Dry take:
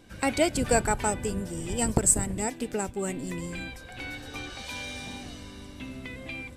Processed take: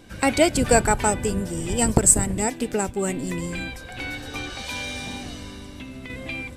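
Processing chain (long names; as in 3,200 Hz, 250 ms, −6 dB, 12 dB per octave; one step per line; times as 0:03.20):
0:05.53–0:06.10: downward compressor, threshold −40 dBFS, peak gain reduction 5.5 dB
level +6 dB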